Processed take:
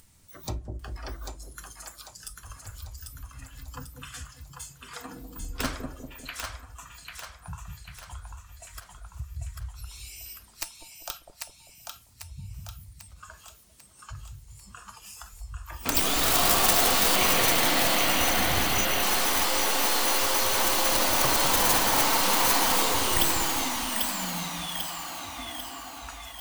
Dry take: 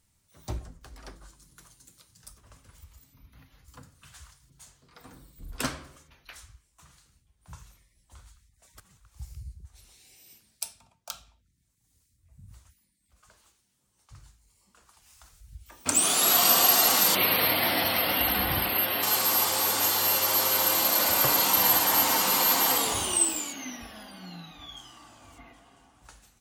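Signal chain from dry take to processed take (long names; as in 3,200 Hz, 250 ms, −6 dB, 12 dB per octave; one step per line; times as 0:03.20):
stylus tracing distortion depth 0.24 ms
upward compression, threshold −29 dBFS
noise reduction from a noise print of the clip's start 12 dB
echo with a time of its own for lows and highs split 630 Hz, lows 197 ms, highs 794 ms, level −4 dB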